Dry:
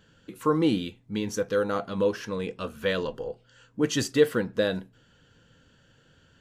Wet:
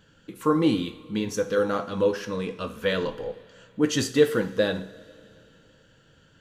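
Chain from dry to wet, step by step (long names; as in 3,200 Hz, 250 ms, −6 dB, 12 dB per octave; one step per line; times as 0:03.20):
flanger 1.5 Hz, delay 0.8 ms, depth 6.2 ms, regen −74%
coupled-rooms reverb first 0.49 s, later 2.9 s, from −16 dB, DRR 9 dB
level +5.5 dB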